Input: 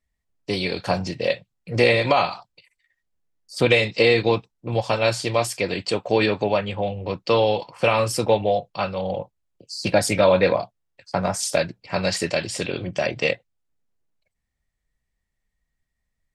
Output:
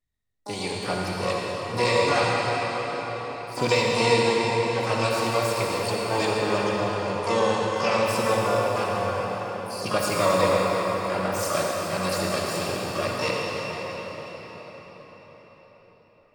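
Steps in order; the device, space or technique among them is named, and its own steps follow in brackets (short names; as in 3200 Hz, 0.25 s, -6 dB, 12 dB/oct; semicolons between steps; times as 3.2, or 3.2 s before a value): shimmer-style reverb (harmoniser +12 st -5 dB; reverb RT60 5.7 s, pre-delay 52 ms, DRR -3 dB); gain -8 dB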